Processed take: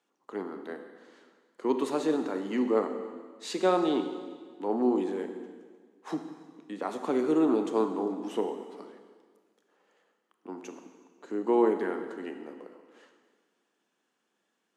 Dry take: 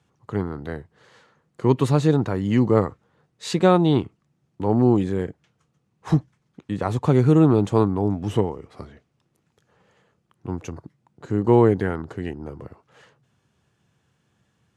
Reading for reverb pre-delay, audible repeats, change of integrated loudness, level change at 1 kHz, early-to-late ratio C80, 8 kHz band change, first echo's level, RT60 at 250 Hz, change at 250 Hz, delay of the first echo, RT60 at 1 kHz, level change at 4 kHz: 25 ms, no echo audible, −8.5 dB, −6.5 dB, 9.0 dB, can't be measured, no echo audible, 1.8 s, −8.5 dB, no echo audible, 1.6 s, −6.5 dB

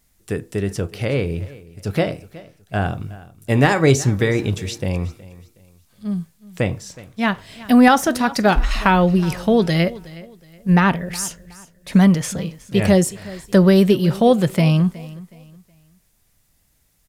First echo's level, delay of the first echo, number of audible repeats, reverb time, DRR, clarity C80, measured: −19.5 dB, 368 ms, 2, no reverb audible, no reverb audible, no reverb audible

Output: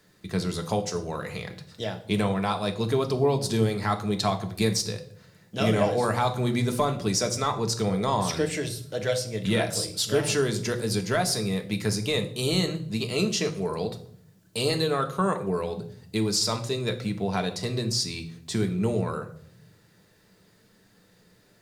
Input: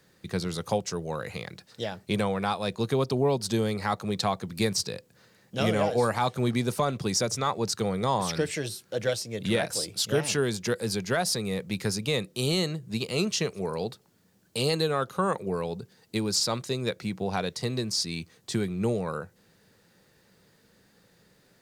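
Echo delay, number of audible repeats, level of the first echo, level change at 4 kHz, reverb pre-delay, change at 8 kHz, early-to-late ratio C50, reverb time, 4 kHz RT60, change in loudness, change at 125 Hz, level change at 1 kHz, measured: no echo audible, no echo audible, no echo audible, +1.5 dB, 3 ms, +1.5 dB, 13.0 dB, 0.60 s, 0.50 s, +2.0 dB, +3.0 dB, +1.5 dB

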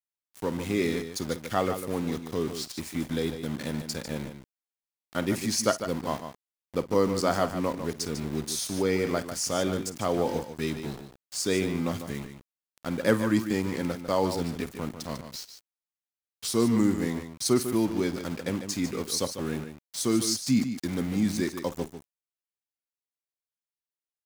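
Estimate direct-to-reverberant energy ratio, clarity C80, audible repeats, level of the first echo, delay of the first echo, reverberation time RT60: no reverb audible, no reverb audible, 2, −17.0 dB, 52 ms, no reverb audible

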